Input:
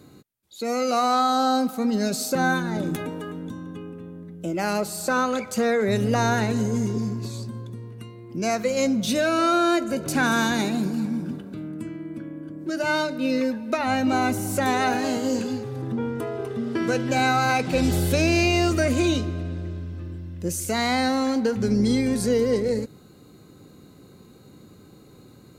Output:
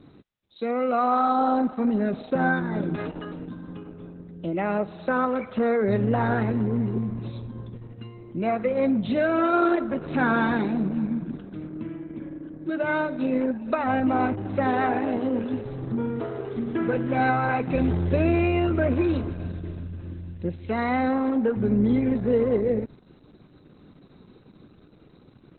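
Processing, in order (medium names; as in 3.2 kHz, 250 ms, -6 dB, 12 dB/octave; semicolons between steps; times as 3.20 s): low-pass that closes with the level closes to 1.9 kHz, closed at -21 dBFS; Opus 8 kbps 48 kHz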